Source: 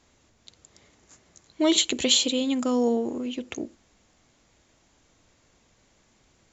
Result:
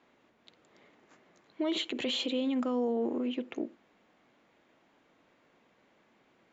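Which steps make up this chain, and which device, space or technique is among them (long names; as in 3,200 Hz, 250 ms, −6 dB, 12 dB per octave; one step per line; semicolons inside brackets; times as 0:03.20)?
DJ mixer with the lows and highs turned down (three-way crossover with the lows and the highs turned down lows −24 dB, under 170 Hz, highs −24 dB, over 3,200 Hz; brickwall limiter −23.5 dBFS, peak gain reduction 11 dB)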